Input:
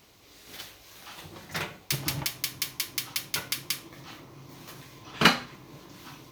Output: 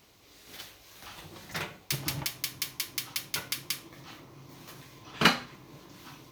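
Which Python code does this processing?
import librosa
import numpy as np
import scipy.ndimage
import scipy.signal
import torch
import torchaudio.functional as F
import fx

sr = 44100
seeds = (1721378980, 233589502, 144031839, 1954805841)

y = fx.band_squash(x, sr, depth_pct=100, at=(1.02, 1.53))
y = F.gain(torch.from_numpy(y), -2.5).numpy()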